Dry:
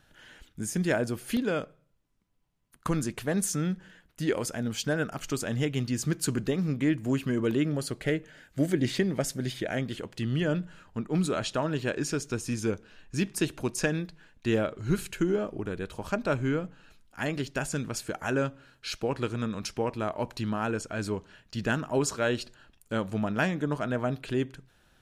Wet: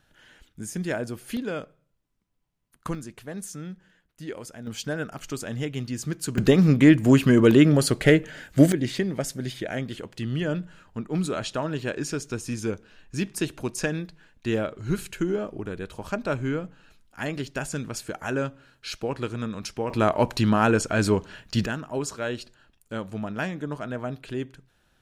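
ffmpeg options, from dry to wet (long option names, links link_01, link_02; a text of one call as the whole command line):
ffmpeg -i in.wav -af "asetnsamples=nb_out_samples=441:pad=0,asendcmd='2.95 volume volume -8dB;4.67 volume volume -1.5dB;6.38 volume volume 11dB;8.72 volume volume 0.5dB;19.9 volume volume 10dB;21.66 volume volume -2.5dB',volume=-2dB" out.wav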